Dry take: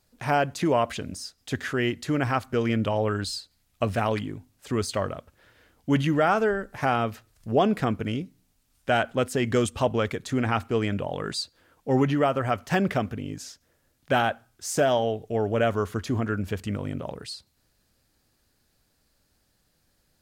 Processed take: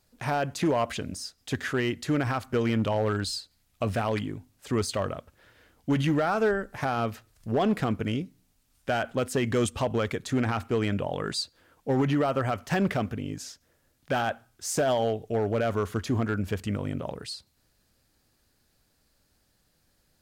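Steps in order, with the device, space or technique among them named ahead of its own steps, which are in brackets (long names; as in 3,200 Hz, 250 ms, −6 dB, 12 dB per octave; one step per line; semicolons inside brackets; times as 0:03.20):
limiter into clipper (brickwall limiter −15.5 dBFS, peak gain reduction 5 dB; hard clipping −18.5 dBFS, distortion −22 dB)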